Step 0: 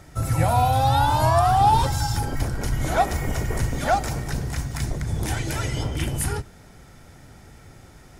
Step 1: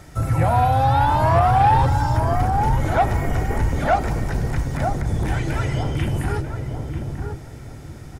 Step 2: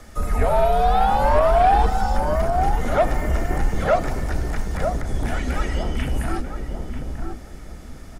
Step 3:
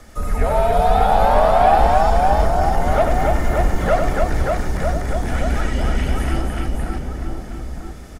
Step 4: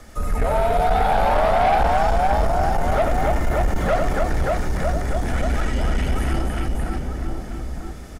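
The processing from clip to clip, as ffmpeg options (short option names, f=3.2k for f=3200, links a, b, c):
-filter_complex "[0:a]acrossover=split=2600[a][b];[b]acompressor=threshold=-46dB:ratio=4:attack=1:release=60[c];[a][c]amix=inputs=2:normalize=0,asplit=2[d][e];[e]adelay=941,lowpass=f=840:p=1,volume=-4.5dB,asplit=2[f][g];[g]adelay=941,lowpass=f=840:p=1,volume=0.31,asplit=2[h][i];[i]adelay=941,lowpass=f=840:p=1,volume=0.31,asplit=2[j][k];[k]adelay=941,lowpass=f=840:p=1,volume=0.31[l];[d][f][h][j][l]amix=inputs=5:normalize=0,aeval=exprs='0.531*(cos(1*acos(clip(val(0)/0.531,-1,1)))-cos(1*PI/2))+0.0531*(cos(5*acos(clip(val(0)/0.531,-1,1)))-cos(5*PI/2))':c=same"
-af "afreqshift=-79"
-af "aecho=1:1:93|287|583:0.501|0.668|0.668"
-af "asoftclip=type=tanh:threshold=-12.5dB"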